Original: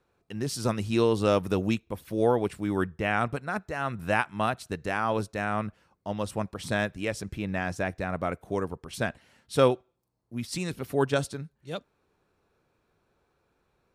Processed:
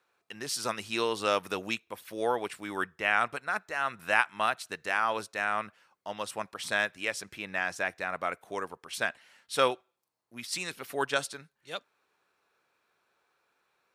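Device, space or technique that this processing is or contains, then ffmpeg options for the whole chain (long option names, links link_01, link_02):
filter by subtraction: -filter_complex "[0:a]asplit=2[link_01][link_02];[link_02]lowpass=1700,volume=-1[link_03];[link_01][link_03]amix=inputs=2:normalize=0,volume=1.5dB"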